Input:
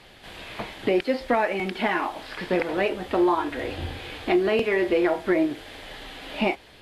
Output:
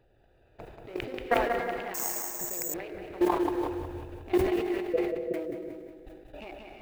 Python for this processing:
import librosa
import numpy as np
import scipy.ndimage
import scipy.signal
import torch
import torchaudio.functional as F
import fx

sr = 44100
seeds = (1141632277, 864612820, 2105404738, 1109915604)

y = fx.wiener(x, sr, points=41)
y = fx.peak_eq(y, sr, hz=210.0, db=-12.5, octaves=0.78)
y = fx.level_steps(y, sr, step_db=22)
y = fx.transient(y, sr, attack_db=-2, sustain_db=10, at=(0.65, 1.19))
y = fx.mod_noise(y, sr, seeds[0], snr_db=31)
y = fx.cheby_ripple(y, sr, hz=670.0, ripple_db=6, at=(4.81, 5.34))
y = fx.echo_feedback(y, sr, ms=183, feedback_pct=50, wet_db=-5)
y = fx.rev_gated(y, sr, seeds[1], gate_ms=370, shape='rising', drr_db=6.5)
y = fx.resample_bad(y, sr, factor=6, down='none', up='zero_stuff', at=(1.94, 2.74))
y = fx.sustainer(y, sr, db_per_s=55.0)
y = y * librosa.db_to_amplitude(1.0)